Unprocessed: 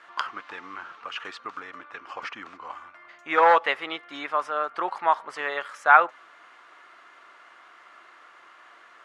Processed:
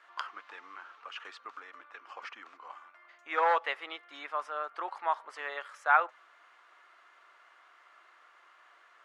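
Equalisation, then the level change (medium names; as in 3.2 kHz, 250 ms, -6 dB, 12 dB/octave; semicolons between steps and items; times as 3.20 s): high-pass 420 Hz 12 dB/octave; -8.5 dB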